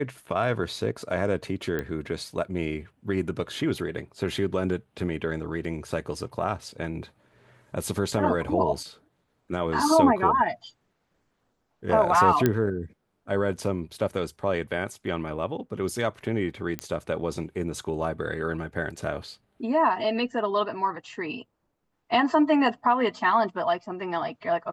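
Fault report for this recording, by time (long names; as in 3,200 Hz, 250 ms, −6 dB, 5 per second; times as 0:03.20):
0:01.79: click −17 dBFS
0:12.46: click −8 dBFS
0:16.79: click −14 dBFS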